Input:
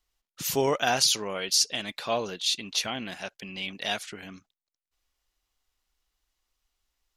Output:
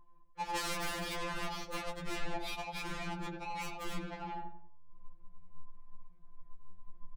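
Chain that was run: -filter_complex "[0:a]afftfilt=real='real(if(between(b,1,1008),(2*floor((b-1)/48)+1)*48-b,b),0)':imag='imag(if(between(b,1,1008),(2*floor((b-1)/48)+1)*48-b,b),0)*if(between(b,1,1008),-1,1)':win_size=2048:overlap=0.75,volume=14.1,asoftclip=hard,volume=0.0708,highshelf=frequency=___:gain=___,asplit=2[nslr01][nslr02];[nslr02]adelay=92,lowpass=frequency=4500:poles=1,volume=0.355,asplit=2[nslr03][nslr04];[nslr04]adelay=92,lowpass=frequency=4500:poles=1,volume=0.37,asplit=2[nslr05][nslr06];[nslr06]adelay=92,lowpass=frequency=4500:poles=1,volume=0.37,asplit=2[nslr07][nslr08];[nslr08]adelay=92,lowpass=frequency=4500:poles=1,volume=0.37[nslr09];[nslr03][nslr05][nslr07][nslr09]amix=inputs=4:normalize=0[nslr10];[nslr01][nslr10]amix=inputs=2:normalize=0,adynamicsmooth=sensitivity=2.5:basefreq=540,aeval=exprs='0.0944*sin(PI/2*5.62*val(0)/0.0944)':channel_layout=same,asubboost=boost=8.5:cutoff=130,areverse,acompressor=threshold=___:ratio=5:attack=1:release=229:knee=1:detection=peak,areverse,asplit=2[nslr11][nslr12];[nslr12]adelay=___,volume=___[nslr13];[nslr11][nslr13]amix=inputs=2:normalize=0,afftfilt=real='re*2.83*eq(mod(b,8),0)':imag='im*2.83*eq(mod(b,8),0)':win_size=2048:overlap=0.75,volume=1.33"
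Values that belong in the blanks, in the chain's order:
8100, -12, 0.0178, 15, 0.251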